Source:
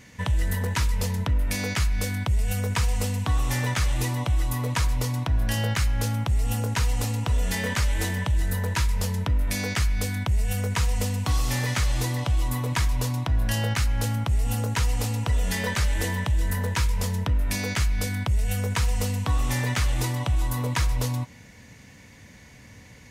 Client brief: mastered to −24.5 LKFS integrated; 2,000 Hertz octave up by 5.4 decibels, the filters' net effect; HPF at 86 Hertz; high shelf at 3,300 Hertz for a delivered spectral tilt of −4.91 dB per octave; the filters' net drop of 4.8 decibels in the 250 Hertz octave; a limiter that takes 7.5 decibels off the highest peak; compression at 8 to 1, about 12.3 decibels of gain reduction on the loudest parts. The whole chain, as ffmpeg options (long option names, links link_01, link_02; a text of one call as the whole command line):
ffmpeg -i in.wav -af "highpass=86,equalizer=frequency=250:width_type=o:gain=-6.5,equalizer=frequency=2000:width_type=o:gain=9,highshelf=frequency=3300:gain=-8.5,acompressor=threshold=-35dB:ratio=8,volume=15.5dB,alimiter=limit=-14.5dB:level=0:latency=1" out.wav